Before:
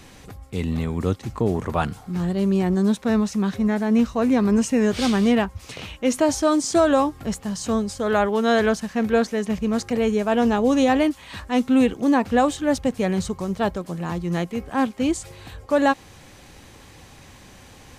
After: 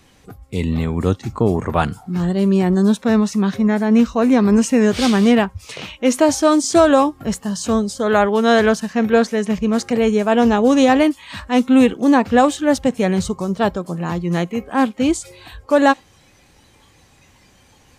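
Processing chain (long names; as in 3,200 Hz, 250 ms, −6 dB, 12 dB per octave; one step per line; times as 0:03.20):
harmonic generator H 3 −27 dB, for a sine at −7.5 dBFS
noise reduction from a noise print of the clip's start 11 dB
level +6 dB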